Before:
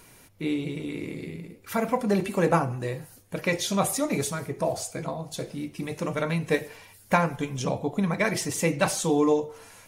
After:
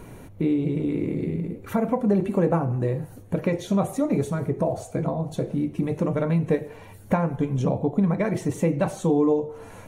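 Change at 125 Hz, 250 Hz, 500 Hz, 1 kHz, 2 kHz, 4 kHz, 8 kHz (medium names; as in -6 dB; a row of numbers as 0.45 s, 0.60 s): +6.0 dB, +5.0 dB, +2.0 dB, -2.5 dB, -7.5 dB, -11.0 dB, -11.5 dB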